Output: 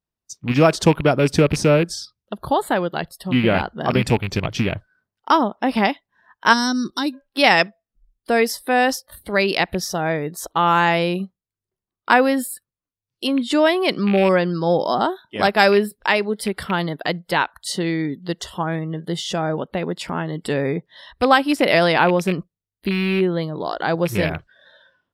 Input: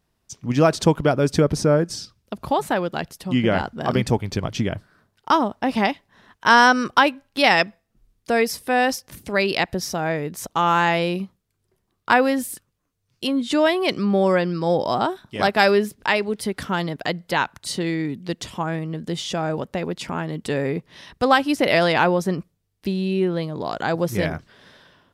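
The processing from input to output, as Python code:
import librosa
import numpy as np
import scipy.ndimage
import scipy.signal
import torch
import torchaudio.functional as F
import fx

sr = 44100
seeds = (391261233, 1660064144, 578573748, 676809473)

y = fx.rattle_buzz(x, sr, strikes_db=-24.0, level_db=-18.0)
y = fx.spec_box(y, sr, start_s=6.53, length_s=0.6, low_hz=400.0, high_hz=3500.0, gain_db=-15)
y = fx.noise_reduce_blind(y, sr, reduce_db=20)
y = F.gain(torch.from_numpy(y), 2.0).numpy()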